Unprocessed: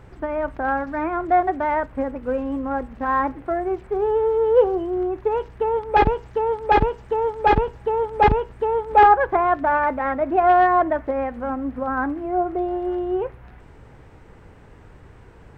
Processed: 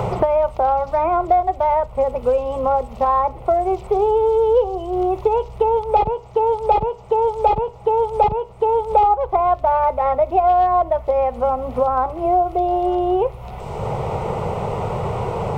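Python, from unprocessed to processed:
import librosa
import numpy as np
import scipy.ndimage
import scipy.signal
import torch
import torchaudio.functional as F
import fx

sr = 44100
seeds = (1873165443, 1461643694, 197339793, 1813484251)

y = fx.fixed_phaser(x, sr, hz=690.0, stages=4)
y = fx.band_squash(y, sr, depth_pct=100)
y = F.gain(torch.from_numpy(y), 5.5).numpy()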